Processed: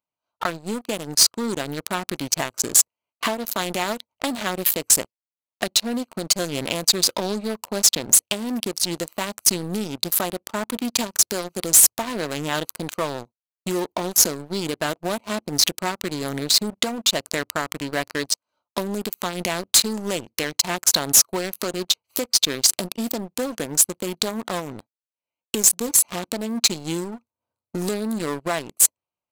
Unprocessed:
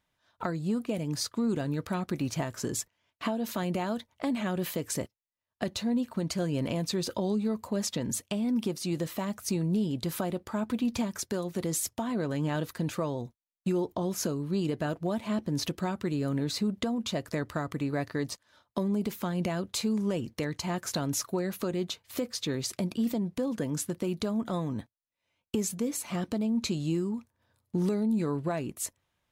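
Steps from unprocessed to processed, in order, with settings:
adaptive Wiener filter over 25 samples
spectral tilt +4.5 dB per octave
leveller curve on the samples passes 3

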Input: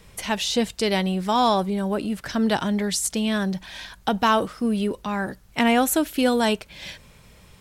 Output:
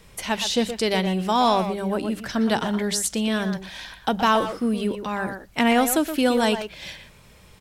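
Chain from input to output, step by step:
mains-hum notches 50/100/150/200 Hz
far-end echo of a speakerphone 120 ms, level −7 dB

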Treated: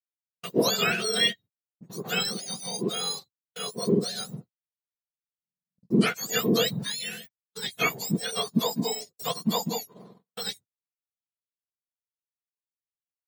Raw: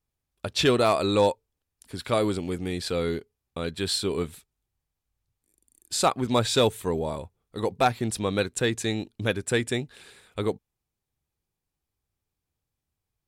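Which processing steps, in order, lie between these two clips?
frequency axis turned over on the octave scale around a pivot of 1,300 Hz
noise gate −45 dBFS, range −43 dB

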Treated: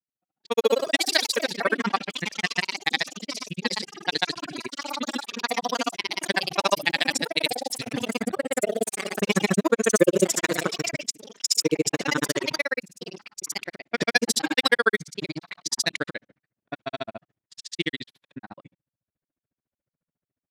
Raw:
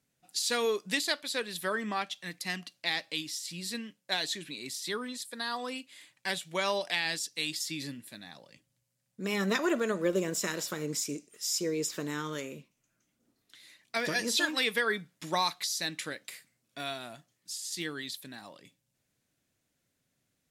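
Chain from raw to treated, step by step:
granular cloud 39 ms, grains 14 per second, pitch spread up and down by 0 semitones
low-pass that shuts in the quiet parts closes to 1,200 Hz, open at −33.5 dBFS
automatic gain control gain up to 14.5 dB
noise gate −56 dBFS, range −16 dB
delay with pitch and tempo change per echo 216 ms, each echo +3 semitones, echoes 3, each echo −6 dB

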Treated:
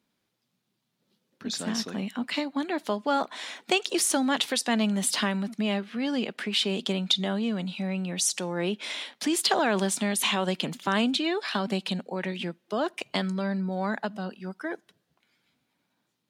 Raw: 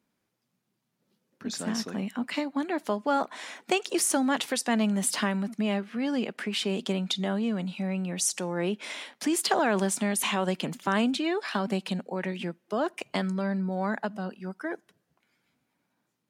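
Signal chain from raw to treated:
parametric band 3,700 Hz +7 dB 0.87 octaves

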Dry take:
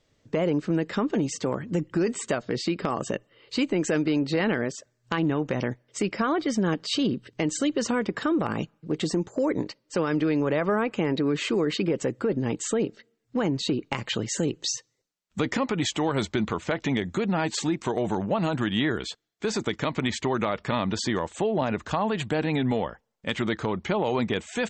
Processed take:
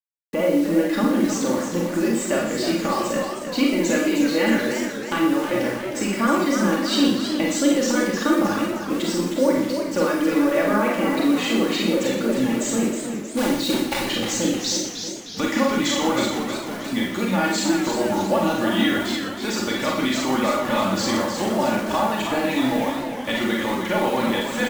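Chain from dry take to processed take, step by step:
0:13.37–0:14.00: one scale factor per block 3 bits
reverb reduction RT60 0.72 s
mains-hum notches 50/100/150/200/250/300/350/400 Hz
comb filter 3.5 ms, depth 72%
0:16.27–0:16.93: downward compressor, threshold −35 dBFS, peak gain reduction 14 dB
bit reduction 7 bits
single-tap delay 121 ms −10.5 dB
four-comb reverb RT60 0.49 s, combs from 31 ms, DRR −1.5 dB
feedback echo with a swinging delay time 313 ms, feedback 54%, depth 131 cents, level −7.5 dB

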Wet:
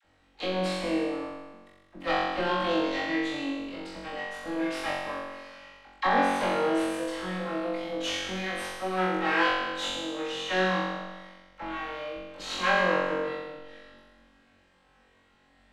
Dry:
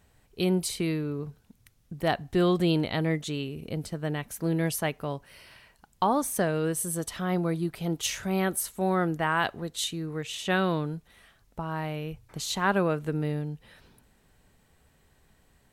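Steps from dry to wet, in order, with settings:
lower of the sound and its delayed copy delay 3.7 ms
low-pass filter 3,600 Hz 12 dB per octave
low-shelf EQ 210 Hz −9.5 dB
all-pass dispersion lows, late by 41 ms, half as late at 590 Hz
on a send: flutter between parallel walls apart 3.7 metres, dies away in 1.3 s
on the sum: saturating transformer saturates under 140 Hz

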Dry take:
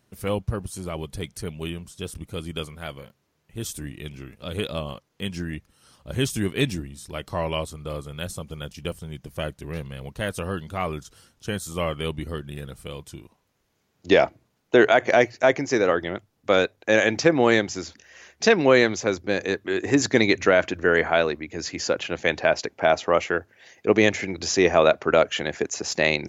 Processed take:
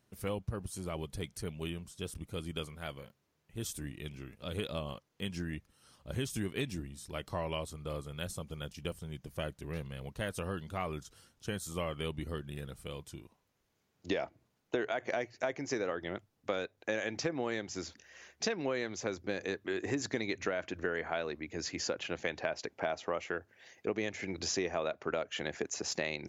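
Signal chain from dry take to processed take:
downward compressor, threshold −24 dBFS, peak gain reduction 12.5 dB
level −7 dB

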